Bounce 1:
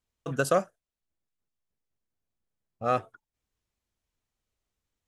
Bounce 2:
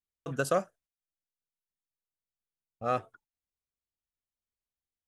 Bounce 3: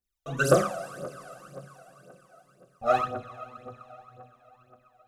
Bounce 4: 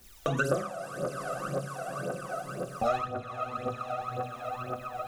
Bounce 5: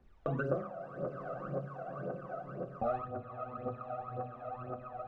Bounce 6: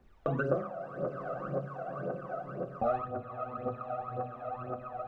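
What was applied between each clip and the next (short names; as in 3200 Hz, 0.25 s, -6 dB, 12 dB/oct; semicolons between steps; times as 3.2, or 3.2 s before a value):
gate -57 dBFS, range -12 dB; gain -3.5 dB
two-slope reverb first 0.51 s, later 4.7 s, from -19 dB, DRR -6.5 dB; phaser 1.9 Hz, delay 1.6 ms, feedback 76%; gain -4 dB
three-band squash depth 100%; gain +3 dB
Bessel low-pass 950 Hz, order 2; gain -4 dB
low shelf 160 Hz -3.5 dB; gain +4 dB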